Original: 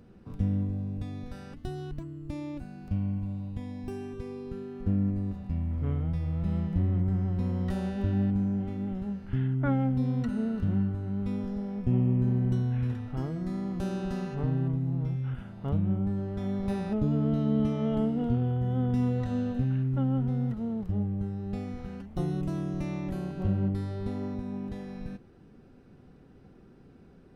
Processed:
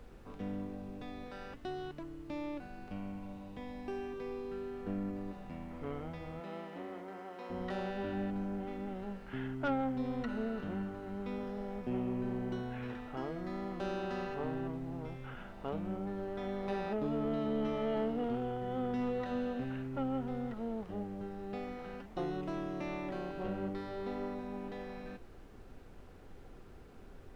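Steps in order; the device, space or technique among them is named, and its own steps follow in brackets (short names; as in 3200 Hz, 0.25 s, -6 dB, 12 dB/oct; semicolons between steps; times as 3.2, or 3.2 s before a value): aircraft cabin announcement (BPF 410–3600 Hz; soft clip -29 dBFS, distortion -18 dB; brown noise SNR 13 dB); 6.39–7.49 HPF 250 Hz -> 520 Hz 12 dB/oct; gain +3 dB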